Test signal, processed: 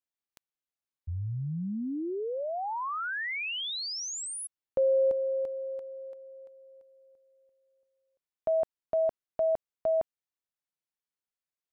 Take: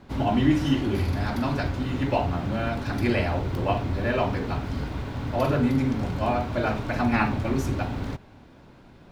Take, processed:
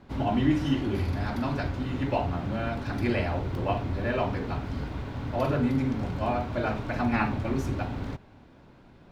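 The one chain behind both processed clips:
high-shelf EQ 5,400 Hz −5.5 dB
level −3 dB

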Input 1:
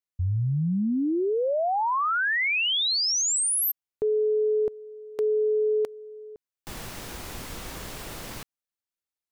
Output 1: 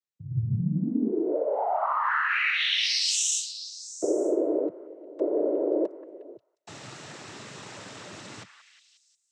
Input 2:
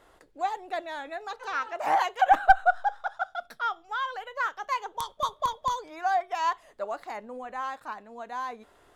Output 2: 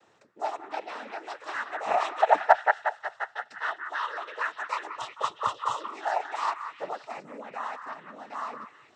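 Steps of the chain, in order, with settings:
cochlear-implant simulation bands 12
echo through a band-pass that steps 179 ms, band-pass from 1,500 Hz, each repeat 0.7 octaves, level −6 dB
level −1.5 dB

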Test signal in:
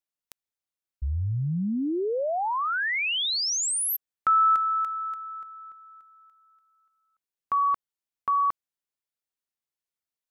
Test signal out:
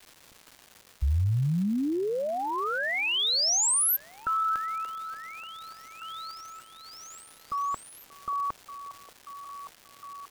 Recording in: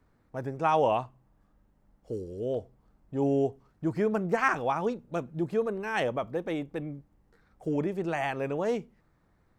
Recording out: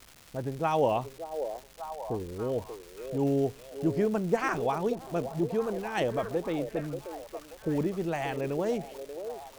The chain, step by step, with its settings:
low-pass that shuts in the quiet parts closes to 360 Hz, open at −25.5 dBFS
low-shelf EQ 130 Hz +5.5 dB
harmonic and percussive parts rebalanced harmonic −4 dB
parametric band 1,500 Hz −6.5 dB 1.9 octaves
surface crackle 530 per second −42 dBFS
echo through a band-pass that steps 583 ms, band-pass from 510 Hz, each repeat 0.7 octaves, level −7 dB
level +3 dB

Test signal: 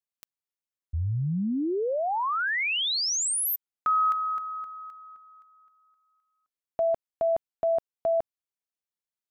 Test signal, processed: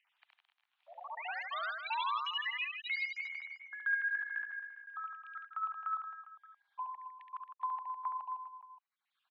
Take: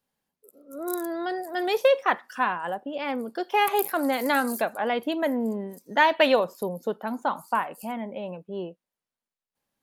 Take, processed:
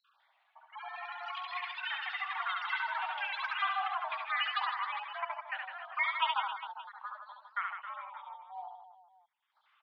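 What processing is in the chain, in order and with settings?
time-frequency cells dropped at random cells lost 60%
upward compression, threshold −39 dBFS
delay with pitch and tempo change per echo 167 ms, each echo +6 semitones, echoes 3
single-sideband voice off tune +360 Hz 400–3,200 Hz
reverse bouncing-ball delay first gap 70 ms, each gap 1.25×, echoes 5
level −8.5 dB

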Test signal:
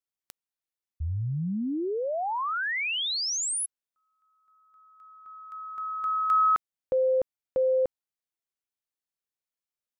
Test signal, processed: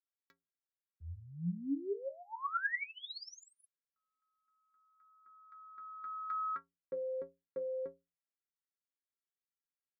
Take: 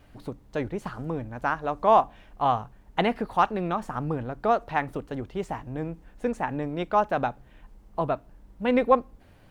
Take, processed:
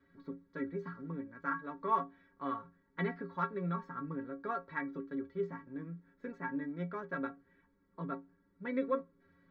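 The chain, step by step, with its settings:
three-way crossover with the lows and the highs turned down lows −20 dB, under 150 Hz, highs −22 dB, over 3,000 Hz
phaser with its sweep stopped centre 2,800 Hz, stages 6
stiff-string resonator 82 Hz, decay 0.36 s, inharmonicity 0.03
level +4 dB

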